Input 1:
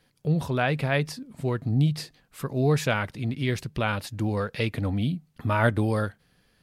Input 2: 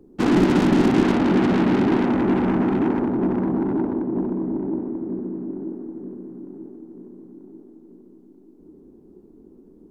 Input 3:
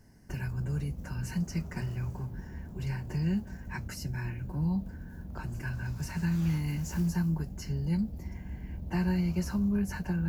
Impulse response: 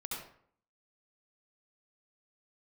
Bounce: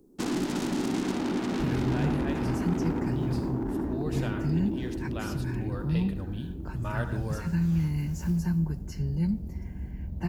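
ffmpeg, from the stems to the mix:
-filter_complex "[0:a]bandreject=frequency=2200:width=6.7,adelay=1350,volume=-13.5dB,asplit=2[link_01][link_02];[link_02]volume=-6dB[link_03];[1:a]bass=frequency=250:gain=0,treble=frequency=4000:gain=15,volume=-9.5dB,asplit=2[link_04][link_05];[link_05]volume=-11dB[link_06];[2:a]lowshelf=frequency=360:gain=6.5,adelay=1300,volume=-3.5dB,asplit=2[link_07][link_08];[link_08]volume=-17.5dB[link_09];[link_01][link_04]amix=inputs=2:normalize=0,acompressor=threshold=-29dB:ratio=6,volume=0dB[link_10];[3:a]atrim=start_sample=2205[link_11];[link_03][link_06][link_09]amix=inputs=3:normalize=0[link_12];[link_12][link_11]afir=irnorm=-1:irlink=0[link_13];[link_07][link_10][link_13]amix=inputs=3:normalize=0"

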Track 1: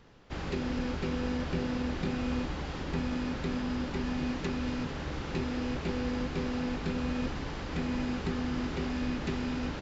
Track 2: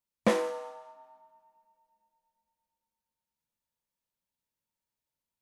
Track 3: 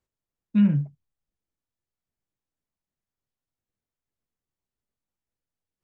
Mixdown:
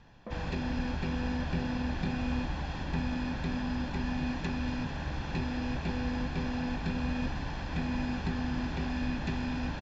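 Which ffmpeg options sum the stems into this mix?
ffmpeg -i stem1.wav -i stem2.wav -filter_complex "[0:a]lowpass=6000,aecho=1:1:1.2:0.52,volume=-1dB[link_01];[1:a]volume=-12dB,lowpass=1500,alimiter=level_in=9.5dB:limit=-24dB:level=0:latency=1:release=388,volume=-9.5dB,volume=0dB[link_02];[link_01][link_02]amix=inputs=2:normalize=0" out.wav

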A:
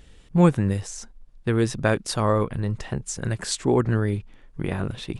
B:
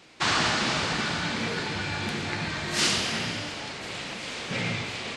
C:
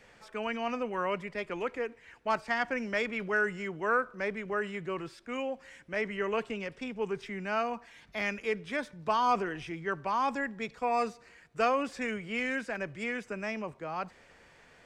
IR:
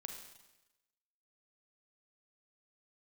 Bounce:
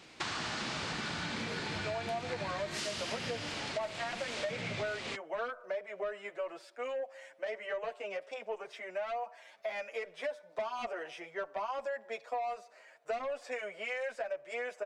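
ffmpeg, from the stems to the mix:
-filter_complex "[1:a]acompressor=threshold=-28dB:ratio=6,volume=-2dB[link_01];[2:a]highpass=frequency=610:width_type=q:width=6.4,asoftclip=type=tanh:threshold=-20dB,asplit=2[link_02][link_03];[link_03]adelay=7.6,afreqshift=0.9[link_04];[link_02][link_04]amix=inputs=2:normalize=1,adelay=1500,volume=0dB[link_05];[link_01][link_05]amix=inputs=2:normalize=0,acompressor=threshold=-34dB:ratio=6"

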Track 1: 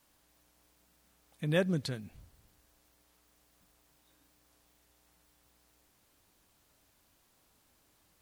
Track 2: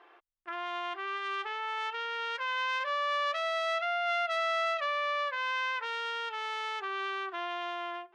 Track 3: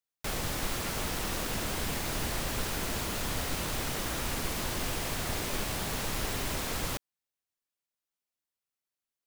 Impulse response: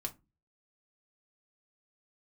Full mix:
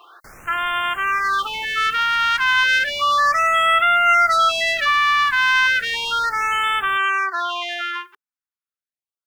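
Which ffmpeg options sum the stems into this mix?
-filter_complex "[1:a]crystalizer=i=9.5:c=0,volume=1.5dB[link_01];[2:a]asoftclip=type=tanh:threshold=-30.5dB,volume=-9dB[link_02];[link_01][link_02]amix=inputs=2:normalize=0,equalizer=frequency=1400:width_type=o:width=1:gain=10.5,afftfilt=real='re*(1-between(b*sr/1024,530*pow(5300/530,0.5+0.5*sin(2*PI*0.33*pts/sr))/1.41,530*pow(5300/530,0.5+0.5*sin(2*PI*0.33*pts/sr))*1.41))':imag='im*(1-between(b*sr/1024,530*pow(5300/530,0.5+0.5*sin(2*PI*0.33*pts/sr))/1.41,530*pow(5300/530,0.5+0.5*sin(2*PI*0.33*pts/sr))*1.41))':win_size=1024:overlap=0.75"

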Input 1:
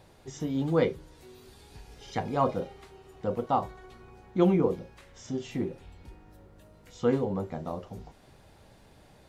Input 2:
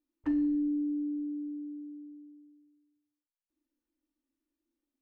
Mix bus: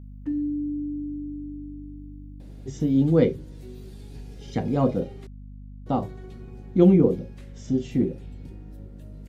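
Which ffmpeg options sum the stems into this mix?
ffmpeg -i stem1.wav -i stem2.wav -filter_complex "[0:a]adelay=2400,volume=-0.5dB,asplit=3[link_01][link_02][link_03];[link_01]atrim=end=5.27,asetpts=PTS-STARTPTS,afade=type=out:start_time=5.266:duration=0.004:curve=hsin[link_04];[link_02]atrim=start=5.27:end=5.86,asetpts=PTS-STARTPTS,volume=0[link_05];[link_03]atrim=start=5.86,asetpts=PTS-STARTPTS,afade=type=in:duration=0.004:curve=hsin[link_06];[link_04][link_05][link_06]concat=n=3:v=0:a=1[link_07];[1:a]aemphasis=mode=production:type=50kf,volume=-8dB[link_08];[link_07][link_08]amix=inputs=2:normalize=0,equalizer=frequency=125:width_type=o:width=1:gain=8,equalizer=frequency=250:width_type=o:width=1:gain=9,equalizer=frequency=500:width_type=o:width=1:gain=4,equalizer=frequency=1000:width_type=o:width=1:gain=-7,aeval=exprs='val(0)+0.01*(sin(2*PI*50*n/s)+sin(2*PI*2*50*n/s)/2+sin(2*PI*3*50*n/s)/3+sin(2*PI*4*50*n/s)/4+sin(2*PI*5*50*n/s)/5)':channel_layout=same" out.wav

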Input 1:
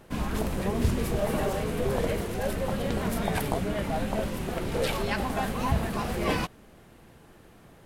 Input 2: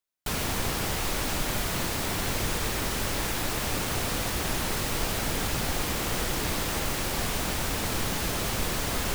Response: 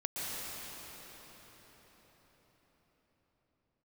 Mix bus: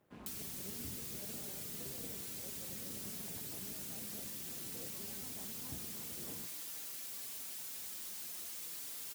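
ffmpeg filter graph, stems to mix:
-filter_complex "[0:a]tremolo=f=200:d=0.824,lowpass=frequency=3400:poles=1,volume=-16.5dB[link_01];[1:a]aderivative,acrusher=bits=5:mode=log:mix=0:aa=0.000001,asplit=2[link_02][link_03];[link_03]adelay=4.7,afreqshift=-0.42[link_04];[link_02][link_04]amix=inputs=2:normalize=1,volume=1.5dB[link_05];[link_01][link_05]amix=inputs=2:normalize=0,highpass=96,acrossover=split=420[link_06][link_07];[link_07]acompressor=threshold=-45dB:ratio=4[link_08];[link_06][link_08]amix=inputs=2:normalize=0"

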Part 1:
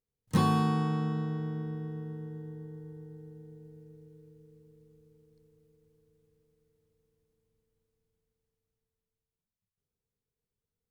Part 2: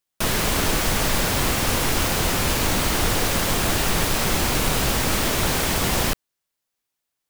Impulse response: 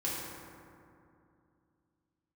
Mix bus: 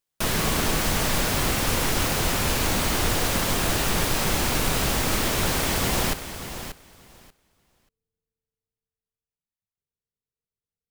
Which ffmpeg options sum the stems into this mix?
-filter_complex "[0:a]volume=-8dB[link_01];[1:a]volume=-2.5dB,asplit=2[link_02][link_03];[link_03]volume=-11dB,aecho=0:1:585|1170|1755:1|0.16|0.0256[link_04];[link_01][link_02][link_04]amix=inputs=3:normalize=0"

